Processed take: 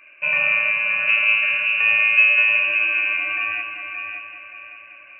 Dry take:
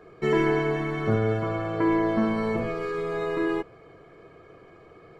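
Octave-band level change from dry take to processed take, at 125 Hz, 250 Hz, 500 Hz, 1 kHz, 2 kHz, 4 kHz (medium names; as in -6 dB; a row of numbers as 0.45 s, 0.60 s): under -20 dB, under -25 dB, -13.0 dB, -2.5 dB, +19.5 dB, +14.5 dB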